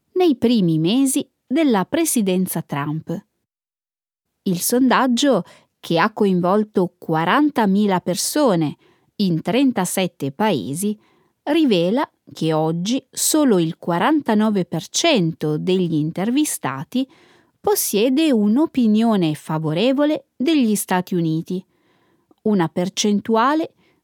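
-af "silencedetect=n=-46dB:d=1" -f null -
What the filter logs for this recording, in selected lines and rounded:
silence_start: 3.22
silence_end: 4.46 | silence_duration: 1.24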